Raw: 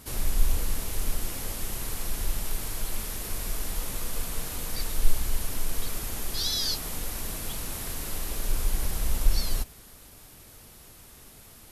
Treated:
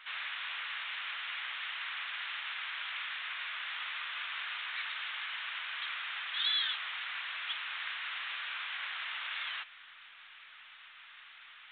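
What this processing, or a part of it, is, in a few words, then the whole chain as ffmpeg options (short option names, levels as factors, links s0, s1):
telephone: -af "highpass=250,lowpass=3400,highpass=f=1400:w=0.5412,highpass=f=1400:w=1.3066,volume=2.82" -ar 8000 -c:a pcm_mulaw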